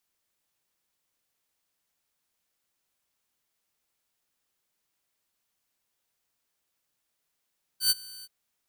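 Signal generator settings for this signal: ADSR saw 4.56 kHz, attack 105 ms, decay 30 ms, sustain -23.5 dB, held 0.44 s, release 38 ms -16 dBFS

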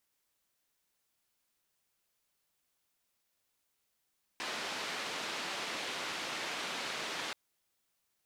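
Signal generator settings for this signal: noise band 230–3600 Hz, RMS -39 dBFS 2.93 s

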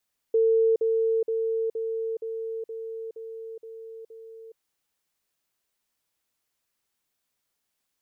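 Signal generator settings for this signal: level ladder 450 Hz -17.5 dBFS, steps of -3 dB, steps 9, 0.42 s 0.05 s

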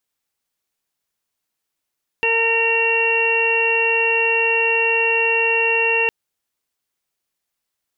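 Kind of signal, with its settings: steady additive tone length 3.86 s, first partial 457 Hz, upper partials -3.5/-19/-4/-11/5 dB, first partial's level -21.5 dB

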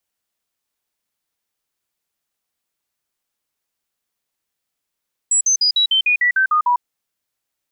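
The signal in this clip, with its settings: stepped sine 7.8 kHz down, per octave 3, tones 10, 0.10 s, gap 0.05 s -12 dBFS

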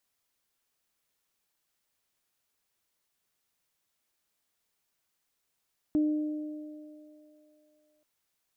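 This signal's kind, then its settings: additive tone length 2.08 s, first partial 303 Hz, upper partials -19 dB, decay 2.28 s, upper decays 4.14 s, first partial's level -21.5 dB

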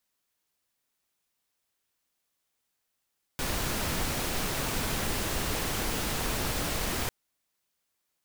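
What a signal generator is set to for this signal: noise pink, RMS -30.5 dBFS 3.70 s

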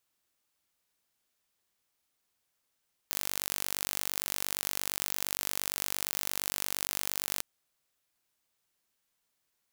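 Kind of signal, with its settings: pulse train 48.7 per s, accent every 0, -5.5 dBFS 4.31 s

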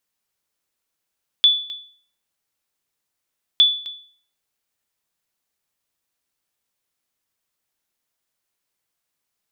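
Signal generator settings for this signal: sonar ping 3.46 kHz, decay 0.49 s, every 2.16 s, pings 2, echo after 0.26 s, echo -17.5 dB -6.5 dBFS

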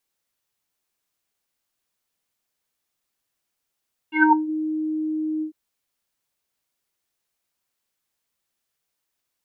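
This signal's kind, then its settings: synth note square D#4 24 dB/octave, low-pass 350 Hz, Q 9.9, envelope 3 oct, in 0.37 s, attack 116 ms, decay 0.23 s, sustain -18.5 dB, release 0.10 s, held 1.30 s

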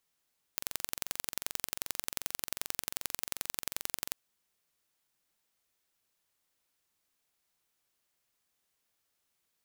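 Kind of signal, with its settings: pulse train 22.6 per s, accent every 2, -4.5 dBFS 3.58 s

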